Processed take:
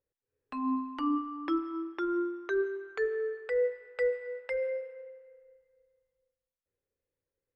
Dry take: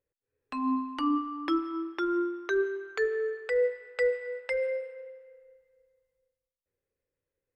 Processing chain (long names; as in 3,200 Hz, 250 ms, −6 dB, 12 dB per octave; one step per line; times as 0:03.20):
high-shelf EQ 3,300 Hz −10.5 dB
level −2 dB